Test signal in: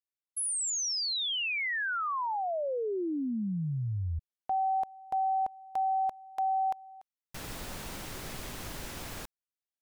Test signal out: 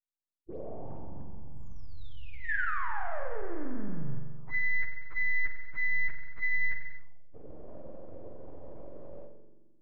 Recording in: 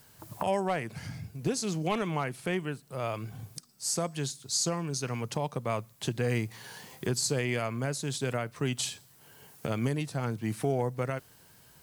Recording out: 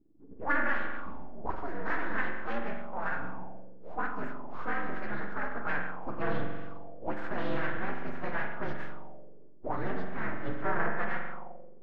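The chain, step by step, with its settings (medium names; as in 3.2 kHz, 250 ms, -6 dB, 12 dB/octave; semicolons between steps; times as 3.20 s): frequency axis rescaled in octaves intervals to 124%; full-wave rectifier; spring tank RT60 1.7 s, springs 43 ms, chirp 25 ms, DRR 2.5 dB; touch-sensitive low-pass 300–1700 Hz up, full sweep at -24.5 dBFS; trim -1.5 dB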